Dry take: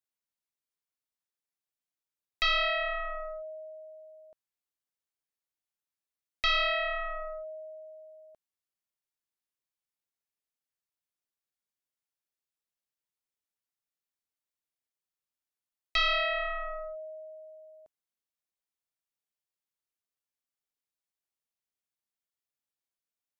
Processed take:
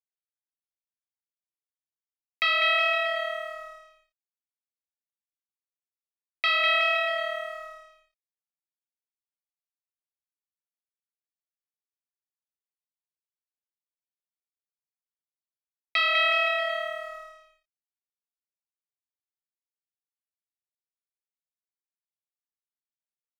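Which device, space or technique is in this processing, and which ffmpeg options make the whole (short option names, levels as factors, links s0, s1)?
pocket radio on a weak battery: -af "highpass=270,lowpass=4000,aecho=1:1:200|370|514.5|637.3|741.7:0.631|0.398|0.251|0.158|0.1,aeval=exprs='sgn(val(0))*max(abs(val(0))-0.00158,0)':c=same,equalizer=f=2300:t=o:w=0.24:g=9,volume=1.33"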